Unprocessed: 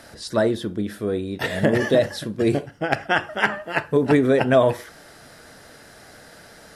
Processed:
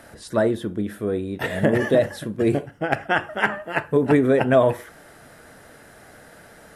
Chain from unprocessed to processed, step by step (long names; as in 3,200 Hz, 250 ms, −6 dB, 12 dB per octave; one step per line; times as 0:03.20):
parametric band 4,800 Hz −9.5 dB 1 octave